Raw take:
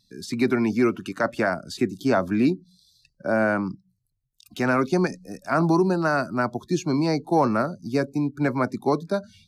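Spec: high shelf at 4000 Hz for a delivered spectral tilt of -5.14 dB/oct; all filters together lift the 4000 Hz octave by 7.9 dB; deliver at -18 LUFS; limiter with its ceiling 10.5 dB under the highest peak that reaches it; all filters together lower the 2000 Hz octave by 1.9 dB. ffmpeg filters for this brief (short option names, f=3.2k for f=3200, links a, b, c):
-af "equalizer=f=2k:t=o:g=-5.5,highshelf=f=4k:g=7.5,equalizer=f=4k:t=o:g=5.5,volume=12dB,alimiter=limit=-8dB:level=0:latency=1"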